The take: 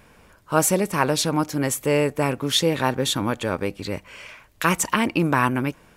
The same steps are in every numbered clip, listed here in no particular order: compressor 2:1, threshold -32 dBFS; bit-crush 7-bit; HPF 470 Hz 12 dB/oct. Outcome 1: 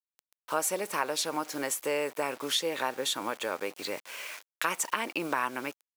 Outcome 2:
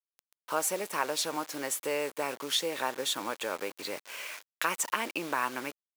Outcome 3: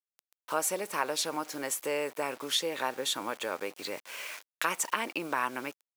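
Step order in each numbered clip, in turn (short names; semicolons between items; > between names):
bit-crush > HPF > compressor; compressor > bit-crush > HPF; bit-crush > compressor > HPF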